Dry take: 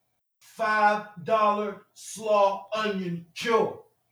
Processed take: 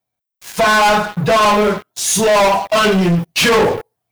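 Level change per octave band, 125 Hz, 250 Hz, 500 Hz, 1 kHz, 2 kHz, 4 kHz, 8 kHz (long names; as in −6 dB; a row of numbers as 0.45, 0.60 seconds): +18.5, +16.0, +11.5, +10.5, +13.5, +19.0, +23.0 decibels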